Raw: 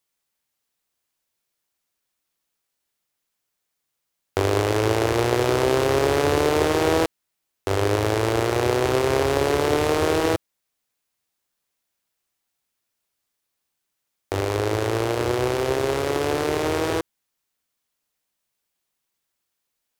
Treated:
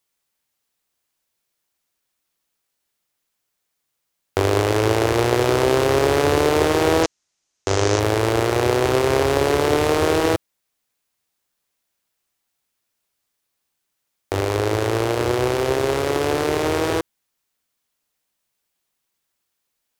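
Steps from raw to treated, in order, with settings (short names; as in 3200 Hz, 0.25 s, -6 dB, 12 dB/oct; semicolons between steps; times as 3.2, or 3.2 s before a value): 7.03–8 synth low-pass 6400 Hz, resonance Q 3.2; gain +2.5 dB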